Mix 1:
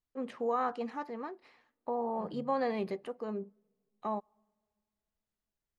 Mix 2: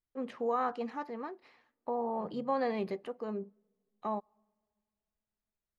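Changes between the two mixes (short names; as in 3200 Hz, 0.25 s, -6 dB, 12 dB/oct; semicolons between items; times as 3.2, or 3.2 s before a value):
first voice: add bell 8800 Hz -5 dB 0.56 oct; second voice -6.0 dB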